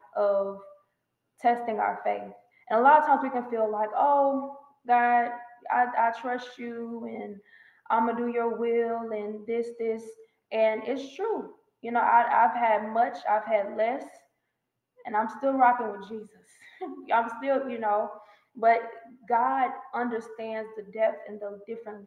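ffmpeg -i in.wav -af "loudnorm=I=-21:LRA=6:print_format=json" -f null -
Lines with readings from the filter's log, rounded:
"input_i" : "-26.9",
"input_tp" : "-8.1",
"input_lra" : "4.7",
"input_thresh" : "-38.0",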